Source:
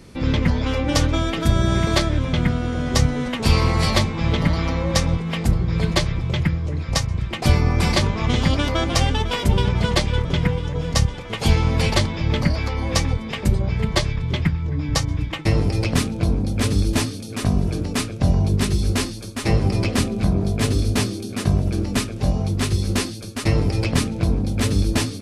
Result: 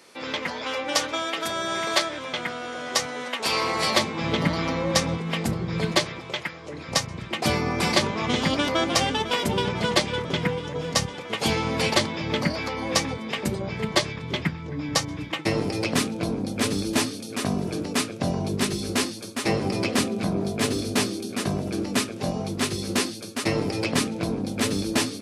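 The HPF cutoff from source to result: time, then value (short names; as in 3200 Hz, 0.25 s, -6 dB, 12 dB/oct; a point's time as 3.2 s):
3.39 s 580 Hz
4.39 s 190 Hz
5.81 s 190 Hz
6.5 s 620 Hz
6.92 s 220 Hz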